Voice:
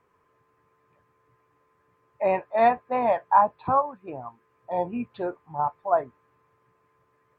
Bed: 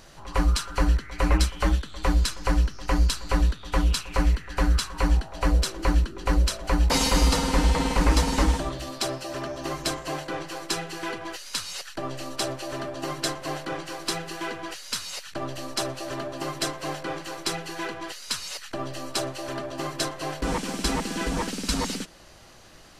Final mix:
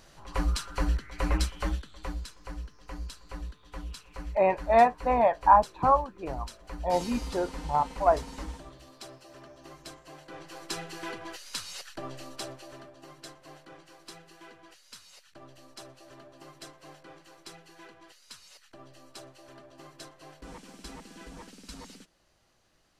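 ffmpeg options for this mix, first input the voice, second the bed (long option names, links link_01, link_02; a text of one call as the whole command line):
ffmpeg -i stem1.wav -i stem2.wav -filter_complex "[0:a]adelay=2150,volume=0dB[link_01];[1:a]volume=5.5dB,afade=type=out:start_time=1.45:duration=0.82:silence=0.266073,afade=type=in:start_time=10.17:duration=0.68:silence=0.266073,afade=type=out:start_time=11.88:duration=1.08:silence=0.237137[link_02];[link_01][link_02]amix=inputs=2:normalize=0" out.wav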